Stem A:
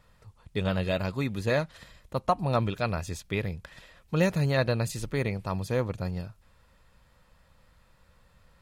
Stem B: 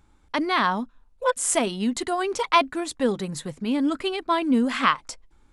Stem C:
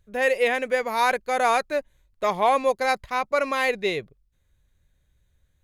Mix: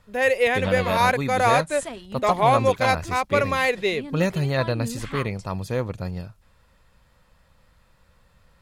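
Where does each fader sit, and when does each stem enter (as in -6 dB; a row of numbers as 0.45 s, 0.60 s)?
+2.0 dB, -12.5 dB, +1.5 dB; 0.00 s, 0.30 s, 0.00 s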